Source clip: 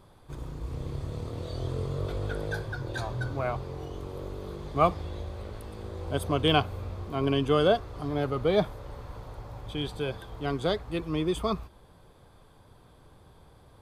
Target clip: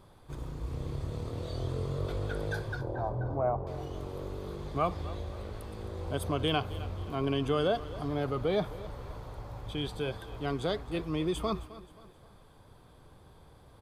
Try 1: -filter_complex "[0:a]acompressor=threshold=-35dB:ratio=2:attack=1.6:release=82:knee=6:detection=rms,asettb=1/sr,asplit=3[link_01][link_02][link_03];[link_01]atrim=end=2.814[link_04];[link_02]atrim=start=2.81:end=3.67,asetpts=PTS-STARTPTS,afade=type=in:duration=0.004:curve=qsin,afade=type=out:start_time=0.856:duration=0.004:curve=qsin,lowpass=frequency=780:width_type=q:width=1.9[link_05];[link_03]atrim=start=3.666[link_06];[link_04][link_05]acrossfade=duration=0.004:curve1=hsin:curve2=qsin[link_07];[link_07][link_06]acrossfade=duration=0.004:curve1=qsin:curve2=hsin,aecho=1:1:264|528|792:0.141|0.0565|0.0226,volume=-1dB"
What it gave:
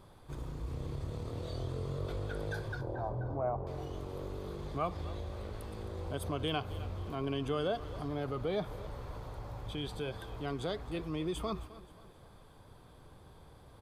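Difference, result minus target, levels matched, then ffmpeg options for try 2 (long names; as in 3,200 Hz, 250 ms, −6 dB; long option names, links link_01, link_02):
downward compressor: peak gain reduction +5 dB
-filter_complex "[0:a]acompressor=threshold=-24.5dB:ratio=2:attack=1.6:release=82:knee=6:detection=rms,asettb=1/sr,asplit=3[link_01][link_02][link_03];[link_01]atrim=end=2.814[link_04];[link_02]atrim=start=2.81:end=3.67,asetpts=PTS-STARTPTS,afade=type=in:duration=0.004:curve=qsin,afade=type=out:start_time=0.856:duration=0.004:curve=qsin,lowpass=frequency=780:width_type=q:width=1.9[link_05];[link_03]atrim=start=3.666[link_06];[link_04][link_05]acrossfade=duration=0.004:curve1=hsin:curve2=qsin[link_07];[link_07][link_06]acrossfade=duration=0.004:curve1=qsin:curve2=hsin,aecho=1:1:264|528|792:0.141|0.0565|0.0226,volume=-1dB"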